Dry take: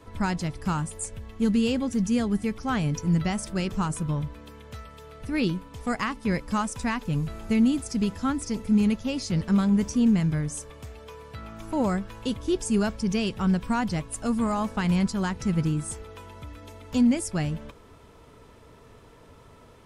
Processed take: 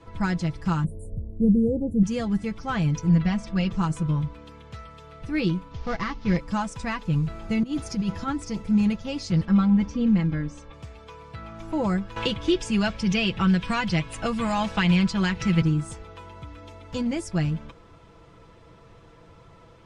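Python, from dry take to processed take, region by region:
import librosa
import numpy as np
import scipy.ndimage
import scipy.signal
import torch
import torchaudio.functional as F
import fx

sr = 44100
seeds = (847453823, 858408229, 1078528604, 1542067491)

y = fx.chain(x, sr, fx.cheby2_bandstop(low_hz=1500.0, high_hz=5000.0, order=4, stop_db=60),
    fx.low_shelf(hz=470.0, db=6.5), at=(0.84, 2.03))
y = fx.chain(y, sr, fx.lowpass(hz=4500.0, slope=12),
    fx.peak_eq(hz=450.0, db=-4.5, octaves=0.21),
    fx.comb(ms=4.2, depth=0.61), at=(3.09, 3.72))
y = fx.chain(y, sr, fx.cvsd(bps=32000),
    fx.low_shelf(hz=78.0, db=10.0), at=(5.71, 6.37))
y = fx.chain(y, sr, fx.notch(hz=7800.0, q=6.6),
    fx.over_compress(threshold_db=-27.0, ratio=-1.0), at=(7.63, 8.28))
y = fx.chain(y, sr, fx.air_absorb(metres=150.0),
    fx.comb(ms=3.7, depth=0.57), at=(9.45, 10.73))
y = fx.chain(y, sr, fx.peak_eq(hz=2700.0, db=9.5, octaves=1.6),
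    fx.band_squash(depth_pct=70), at=(12.16, 15.62))
y = scipy.signal.sosfilt(scipy.signal.butter(2, 6000.0, 'lowpass', fs=sr, output='sos'), y)
y = fx.peak_eq(y, sr, hz=85.0, db=11.0, octaves=0.58)
y = y + 0.65 * np.pad(y, (int(6.0 * sr / 1000.0), 0))[:len(y)]
y = y * 10.0 ** (-1.5 / 20.0)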